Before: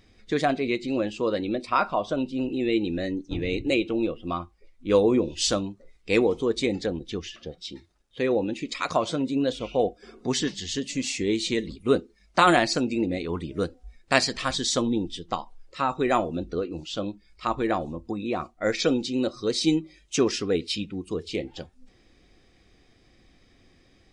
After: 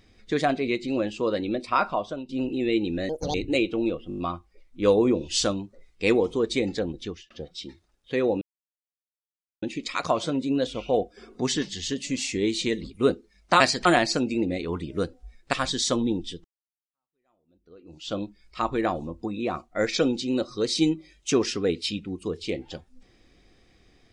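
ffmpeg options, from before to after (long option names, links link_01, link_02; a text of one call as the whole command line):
ffmpeg -i in.wav -filter_complex "[0:a]asplit=15[link_01][link_02][link_03][link_04][link_05][link_06][link_07][link_08][link_09][link_10][link_11][link_12][link_13][link_14][link_15];[link_01]atrim=end=2.29,asetpts=PTS-STARTPTS,afade=type=out:start_time=1.91:duration=0.38:silence=0.16788[link_16];[link_02]atrim=start=2.29:end=3.094,asetpts=PTS-STARTPTS,afade=type=in:duration=0.004:curve=hsin:silence=0.16788[link_17];[link_03]atrim=start=3.09:end=3.51,asetpts=PTS-STARTPTS,asetrate=73206,aresample=44100[link_18];[link_04]atrim=start=3.506:end=4.272[link_19];[link_05]atrim=start=4.248:end=4.272[link_20];[link_06]atrim=start=4.248:end=4.272[link_21];[link_07]atrim=start=4.248:end=4.272[link_22];[link_08]atrim=start=4.248:end=4.272[link_23];[link_09]atrim=start=4.248:end=7.37,asetpts=PTS-STARTPTS,afade=type=out:start_time=2.842:duration=0.28[link_24];[link_10]atrim=start=7.37:end=8.48,asetpts=PTS-STARTPTS,afade=type=in:duration=0.004:curve=hsin,afade=type=out:start_time=1.106:duration=0.004:curve=hsin,apad=pad_dur=1.21[link_25];[link_11]atrim=start=8.48:end=12.462,asetpts=PTS-STARTPTS,afade=type=in:duration=0.004:curve=hsin[link_26];[link_12]atrim=start=14.138:end=14.392[link_27];[link_13]atrim=start=12.458:end=14.142[link_28];[link_14]atrim=start=14.388:end=15.3,asetpts=PTS-STARTPTS,afade=type=out:start_time=0.908:duration=0.004:curve=hsin[link_29];[link_15]atrim=start=15.3,asetpts=PTS-STARTPTS,afade=type=in:duration=1.66:curve=exp[link_30];[link_16][link_17]concat=n=2:v=0:a=1[link_31];[link_31][link_18]acrossfade=duration=0.004:curve1=hsin:curve2=hsin[link_32];[link_32][link_19]acrossfade=duration=0.004:curve1=hsin:curve2=hsin[link_33];[link_33][link_20]acrossfade=duration=0.004:curve1=hsin:curve2=hsin[link_34];[link_34][link_21]acrossfade=duration=0.004:curve1=hsin:curve2=hsin[link_35];[link_35][link_22]acrossfade=duration=0.004:curve1=hsin:curve2=hsin[link_36];[link_36][link_23]acrossfade=duration=0.004:curve1=hsin:curve2=hsin[link_37];[link_24][link_25][link_26]concat=n=3:v=0:a=1[link_38];[link_37][link_38]acrossfade=duration=0.004:curve1=hsin:curve2=hsin[link_39];[link_39][link_27]acrossfade=duration=0.004:curve1=hsin:curve2=hsin[link_40];[link_40][link_28]acrossfade=duration=0.004:curve1=hsin:curve2=hsin[link_41];[link_29][link_30]concat=n=2:v=0:a=1[link_42];[link_41][link_42]acrossfade=duration=0.004:curve1=hsin:curve2=hsin" out.wav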